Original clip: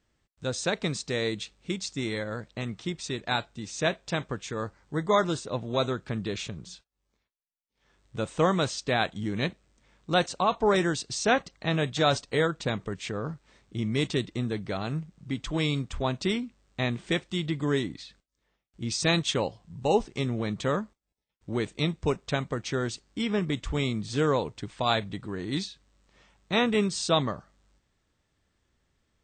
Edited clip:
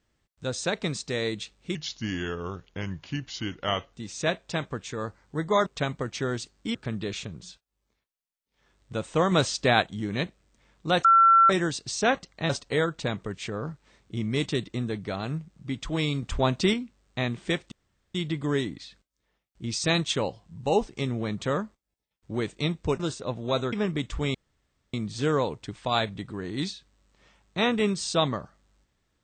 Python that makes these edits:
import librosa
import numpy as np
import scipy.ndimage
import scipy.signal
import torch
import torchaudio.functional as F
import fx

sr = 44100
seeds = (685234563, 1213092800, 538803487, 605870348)

y = fx.edit(x, sr, fx.speed_span(start_s=1.75, length_s=1.77, speed=0.81),
    fx.swap(start_s=5.25, length_s=0.73, other_s=22.18, other_length_s=1.08),
    fx.clip_gain(start_s=8.55, length_s=0.5, db=4.5),
    fx.bleep(start_s=10.28, length_s=0.45, hz=1350.0, db=-13.5),
    fx.cut(start_s=11.73, length_s=0.38),
    fx.clip_gain(start_s=15.84, length_s=0.51, db=4.5),
    fx.insert_room_tone(at_s=17.33, length_s=0.43),
    fx.insert_room_tone(at_s=23.88, length_s=0.59), tone=tone)